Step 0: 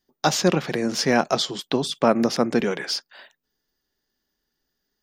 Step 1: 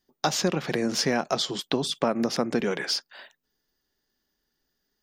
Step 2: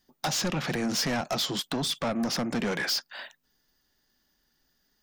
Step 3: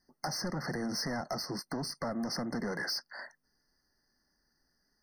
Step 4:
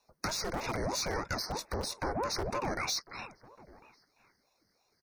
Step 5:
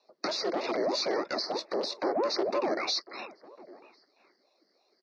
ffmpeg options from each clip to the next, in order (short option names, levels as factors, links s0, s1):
-af "acompressor=threshold=0.0891:ratio=4"
-filter_complex "[0:a]equalizer=f=410:t=o:w=0.6:g=-6.5,asplit=2[s0][s1];[s1]alimiter=limit=0.126:level=0:latency=1:release=491,volume=1[s2];[s0][s2]amix=inputs=2:normalize=0,asoftclip=type=tanh:threshold=0.0631"
-af "acompressor=threshold=0.0316:ratio=6,afftfilt=real='re*eq(mod(floor(b*sr/1024/2100),2),0)':imag='im*eq(mod(floor(b*sr/1024/2100),2),0)':win_size=1024:overlap=0.75,volume=0.75"
-filter_complex "[0:a]acrossover=split=140|2600[s0][s1][s2];[s0]aeval=exprs='(mod(133*val(0)+1,2)-1)/133':c=same[s3];[s3][s1][s2]amix=inputs=3:normalize=0,asplit=2[s4][s5];[s5]adelay=1050,volume=0.0891,highshelf=f=4000:g=-23.6[s6];[s4][s6]amix=inputs=2:normalize=0,aeval=exprs='val(0)*sin(2*PI*480*n/s+480*0.7/3.1*sin(2*PI*3.1*n/s))':c=same,volume=1.68"
-af "highpass=f=260:w=0.5412,highpass=f=260:w=1.3066,equalizer=f=360:t=q:w=4:g=6,equalizer=f=610:t=q:w=4:g=5,equalizer=f=930:t=q:w=4:g=-5,equalizer=f=1500:t=q:w=4:g=-7,equalizer=f=2300:t=q:w=4:g=-4,equalizer=f=4500:t=q:w=4:g=5,lowpass=f=4600:w=0.5412,lowpass=f=4600:w=1.3066,volume=1.68"